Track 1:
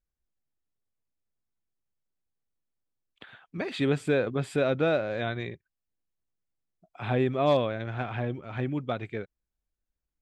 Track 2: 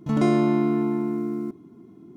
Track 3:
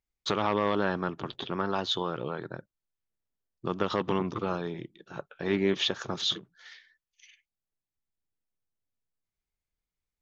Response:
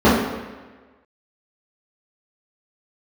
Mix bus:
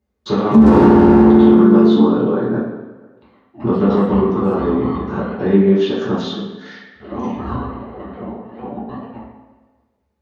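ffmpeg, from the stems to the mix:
-filter_complex "[0:a]acontrast=32,aeval=exprs='val(0)*sin(2*PI*530*n/s+530*0.2/4.3*sin(2*PI*4.3*n/s))':c=same,volume=0.106,asplit=2[s0][s1];[s1]volume=0.2[s2];[1:a]highpass=180,acrossover=split=480[s3][s4];[s4]acompressor=threshold=0.0316:ratio=6[s5];[s3][s5]amix=inputs=2:normalize=0,aeval=exprs='0.0944*(abs(mod(val(0)/0.0944+3,4)-2)-1)':c=same,adelay=450,volume=1.41,asplit=2[s6][s7];[s7]volume=0.168[s8];[2:a]acompressor=threshold=0.01:ratio=2.5,volume=0.944,asplit=2[s9][s10];[s10]volume=0.355[s11];[3:a]atrim=start_sample=2205[s12];[s2][s8][s11]amix=inputs=3:normalize=0[s13];[s13][s12]afir=irnorm=-1:irlink=0[s14];[s0][s6][s9][s14]amix=inputs=4:normalize=0,alimiter=limit=0.891:level=0:latency=1:release=84"

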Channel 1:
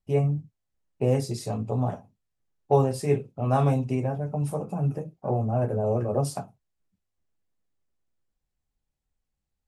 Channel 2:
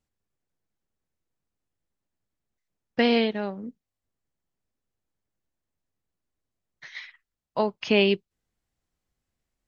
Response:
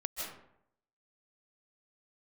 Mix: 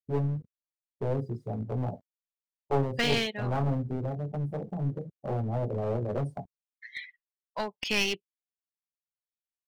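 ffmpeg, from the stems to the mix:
-filter_complex "[0:a]acrusher=bits=6:mix=0:aa=0.000001,tiltshelf=f=1300:g=4,bandreject=f=2600:w=12,volume=0.447[s0];[1:a]tiltshelf=f=870:g=-7.5,volume=0.631[s1];[s0][s1]amix=inputs=2:normalize=0,afftdn=nr=27:nf=-38,aeval=exprs='clip(val(0),-1,0.0335)':c=same"

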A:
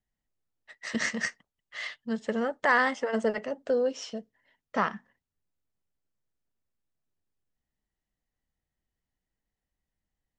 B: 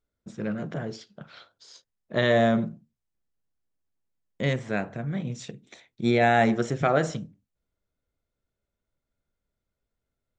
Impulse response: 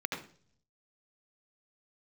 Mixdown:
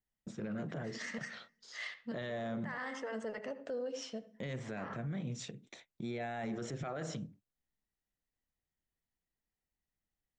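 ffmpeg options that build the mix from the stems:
-filter_complex "[0:a]volume=0.447,asplit=2[s0][s1];[s1]volume=0.178[s2];[1:a]highpass=f=85:w=0.5412,highpass=f=85:w=1.3066,agate=range=0.0631:threshold=0.00251:ratio=16:detection=peak,alimiter=limit=0.0944:level=0:latency=1:release=12,volume=0.668,asplit=2[s3][s4];[s4]apad=whole_len=458053[s5];[s0][s5]sidechaincompress=threshold=0.00251:ratio=8:attack=16:release=171[s6];[2:a]atrim=start_sample=2205[s7];[s2][s7]afir=irnorm=-1:irlink=0[s8];[s6][s3][s8]amix=inputs=3:normalize=0,alimiter=level_in=2.51:limit=0.0631:level=0:latency=1:release=93,volume=0.398"

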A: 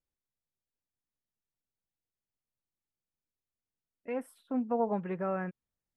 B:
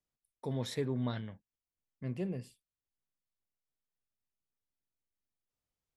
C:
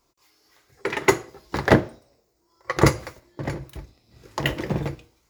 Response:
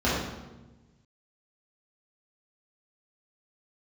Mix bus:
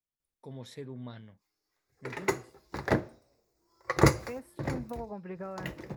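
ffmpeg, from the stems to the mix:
-filter_complex "[0:a]acompressor=threshold=0.0158:ratio=6,adelay=200,volume=0.944[s0];[1:a]volume=0.398[s1];[2:a]equalizer=f=3100:t=o:w=0.3:g=-7.5,adelay=1200,volume=0.596,afade=t=in:st=1.81:d=0.39:silence=0.298538,afade=t=in:st=3.05:d=0.72:silence=0.473151,afade=t=out:st=4.74:d=0.56:silence=0.316228[s2];[s0][s1][s2]amix=inputs=3:normalize=0"

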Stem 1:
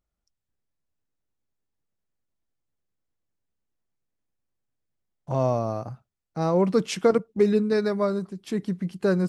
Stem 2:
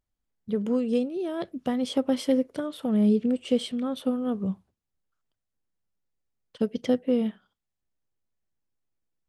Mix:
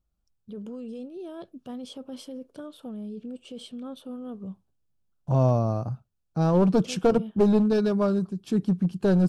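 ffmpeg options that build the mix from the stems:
-filter_complex "[0:a]bass=f=250:g=8,treble=f=4000:g=-2,aeval=exprs='clip(val(0),-1,0.141)':c=same,volume=0.891[s0];[1:a]alimiter=limit=0.0708:level=0:latency=1:release=10,volume=0.398[s1];[s0][s1]amix=inputs=2:normalize=0,equalizer=f=2000:w=5.6:g=-14.5"

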